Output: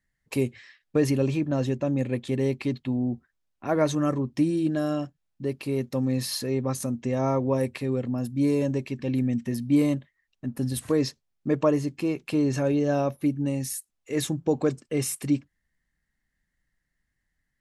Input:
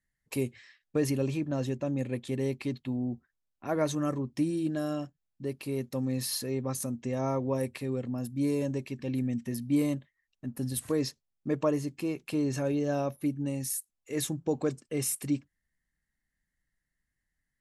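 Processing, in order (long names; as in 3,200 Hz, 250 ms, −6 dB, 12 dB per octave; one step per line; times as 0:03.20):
high-shelf EQ 8,900 Hz −10 dB
level +5.5 dB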